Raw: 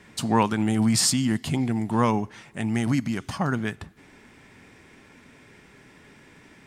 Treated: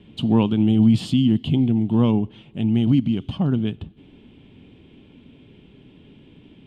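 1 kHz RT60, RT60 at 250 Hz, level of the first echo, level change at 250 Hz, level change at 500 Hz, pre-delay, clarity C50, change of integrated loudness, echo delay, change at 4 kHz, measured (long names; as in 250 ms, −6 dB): no reverb audible, no reverb audible, no echo audible, +6.5 dB, +1.5 dB, no reverb audible, no reverb audible, +4.5 dB, no echo audible, −2.5 dB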